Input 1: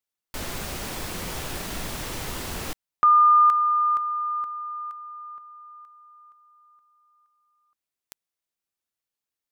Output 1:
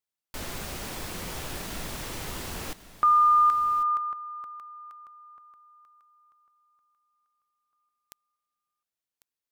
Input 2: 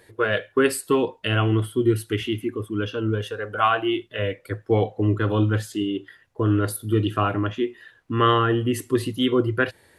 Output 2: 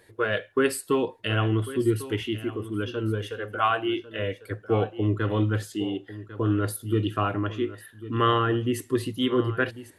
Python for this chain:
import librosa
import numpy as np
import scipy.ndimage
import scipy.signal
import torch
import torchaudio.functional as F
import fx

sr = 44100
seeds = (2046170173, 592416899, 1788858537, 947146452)

y = x + 10.0 ** (-15.0 / 20.0) * np.pad(x, (int(1098 * sr / 1000.0), 0))[:len(x)]
y = y * 10.0 ** (-3.5 / 20.0)